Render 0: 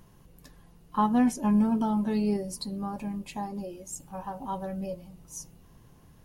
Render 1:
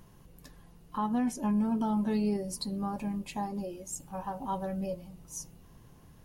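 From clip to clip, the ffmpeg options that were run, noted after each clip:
-af "alimiter=limit=-22dB:level=0:latency=1:release=219"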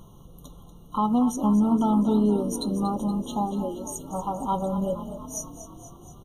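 -filter_complex "[0:a]asplit=8[a][b][c][d][e][f][g][h];[b]adelay=237,afreqshift=31,volume=-12.5dB[i];[c]adelay=474,afreqshift=62,volume=-16.5dB[j];[d]adelay=711,afreqshift=93,volume=-20.5dB[k];[e]adelay=948,afreqshift=124,volume=-24.5dB[l];[f]adelay=1185,afreqshift=155,volume=-28.6dB[m];[g]adelay=1422,afreqshift=186,volume=-32.6dB[n];[h]adelay=1659,afreqshift=217,volume=-36.6dB[o];[a][i][j][k][l][m][n][o]amix=inputs=8:normalize=0,afftfilt=real='re*eq(mod(floor(b*sr/1024/1400),2),0)':imag='im*eq(mod(floor(b*sr/1024/1400),2),0)':win_size=1024:overlap=0.75,volume=7.5dB"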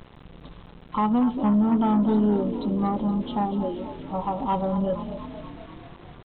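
-af "aeval=exprs='0.237*(cos(1*acos(clip(val(0)/0.237,-1,1)))-cos(1*PI/2))+0.0168*(cos(5*acos(clip(val(0)/0.237,-1,1)))-cos(5*PI/2))':c=same,aresample=8000,aeval=exprs='val(0)*gte(abs(val(0)),0.00668)':c=same,aresample=44100"

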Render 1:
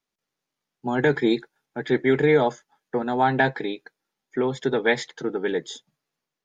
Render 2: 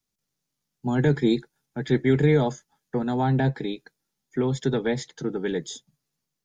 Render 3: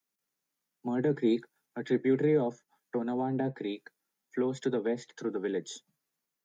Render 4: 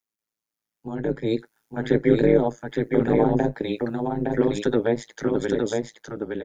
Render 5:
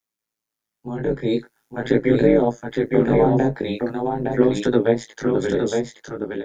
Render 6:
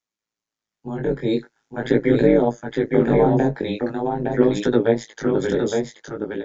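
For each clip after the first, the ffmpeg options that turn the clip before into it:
-filter_complex "[0:a]bass=f=250:g=14,treble=f=4k:g=11,acrossover=split=390|750[a][b][c];[c]alimiter=limit=-19dB:level=0:latency=1:release=355[d];[a][b][d]amix=inputs=3:normalize=0,volume=-5dB"
-filter_complex "[0:a]acrossover=split=190 2200:gain=0.0794 1 0.126[a][b][c];[a][b][c]amix=inputs=3:normalize=0,acrossover=split=150|680[d][e][f];[f]acompressor=threshold=-44dB:ratio=12[g];[d][e][g]amix=inputs=3:normalize=0,crystalizer=i=7:c=0,volume=-4dB"
-filter_complex "[0:a]dynaudnorm=f=230:g=11:m=13dB,tremolo=f=110:d=0.947,asplit=2[a][b];[b]aecho=0:1:864:0.668[c];[a][c]amix=inputs=2:normalize=0"
-af "flanger=delay=16:depth=6:speed=0.44,volume=6dB"
-af "aresample=16000,aresample=44100"

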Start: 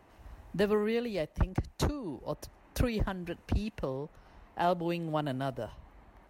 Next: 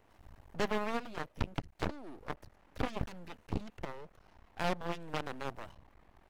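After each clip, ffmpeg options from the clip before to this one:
-filter_complex "[0:a]acrossover=split=3100[a][b];[b]acompressor=threshold=-57dB:ratio=4:attack=1:release=60[c];[a][c]amix=inputs=2:normalize=0,aeval=exprs='0.133*(cos(1*acos(clip(val(0)/0.133,-1,1)))-cos(1*PI/2))+0.00944*(cos(5*acos(clip(val(0)/0.133,-1,1)))-cos(5*PI/2))+0.0473*(cos(7*acos(clip(val(0)/0.133,-1,1)))-cos(7*PI/2))':c=same,aeval=exprs='max(val(0),0)':c=same,volume=-3dB"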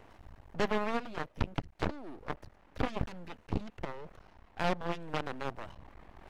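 -af "highshelf=f=8.1k:g=-10.5,areverse,acompressor=mode=upward:threshold=-45dB:ratio=2.5,areverse,volume=2.5dB"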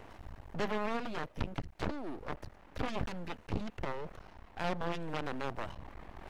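-af "alimiter=level_in=3dB:limit=-24dB:level=0:latency=1:release=14,volume=-3dB,volume=4.5dB"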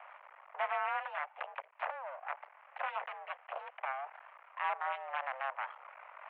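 -af "highpass=f=370:t=q:w=0.5412,highpass=f=370:t=q:w=1.307,lowpass=f=2.4k:t=q:w=0.5176,lowpass=f=2.4k:t=q:w=0.7071,lowpass=f=2.4k:t=q:w=1.932,afreqshift=270,volume=2dB"

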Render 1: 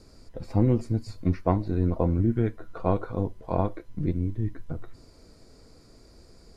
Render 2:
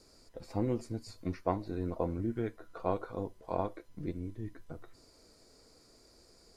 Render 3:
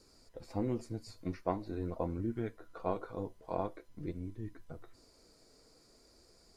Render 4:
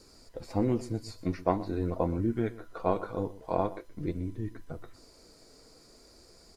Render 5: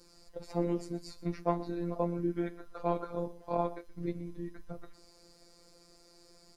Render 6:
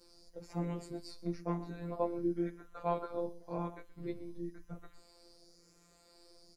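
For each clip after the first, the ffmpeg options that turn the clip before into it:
-af "bass=f=250:g=-9,treble=f=4k:g=5,volume=-5.5dB"
-af "flanger=delay=0.7:depth=6:regen=-71:speed=0.45:shape=sinusoidal,volume=2dB"
-af "aecho=1:1:124:0.126,volume=7dB"
-af "afftfilt=real='hypot(re,im)*cos(PI*b)':imag='0':win_size=1024:overlap=0.75"
-filter_complex "[0:a]asplit=2[a][b];[b]adelay=11.3,afreqshift=-0.96[c];[a][c]amix=inputs=2:normalize=1"

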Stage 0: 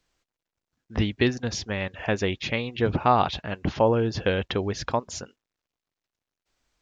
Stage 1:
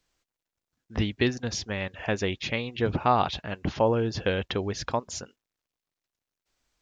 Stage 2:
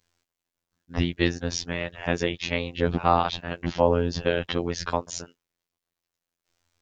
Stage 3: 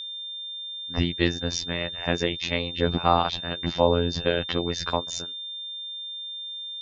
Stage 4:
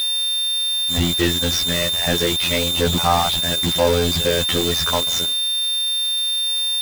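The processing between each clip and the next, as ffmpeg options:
-af "highshelf=f=5k:g=4,volume=-2.5dB"
-af "aeval=exprs='val(0)*sin(2*PI*32*n/s)':c=same,afftfilt=real='hypot(re,im)*cos(PI*b)':imag='0':win_size=2048:overlap=0.75,volume=8dB"
-af "aeval=exprs='val(0)+0.0224*sin(2*PI*3600*n/s)':c=same"
-af "aeval=exprs='val(0)+0.5*0.15*sgn(val(0))':c=same"

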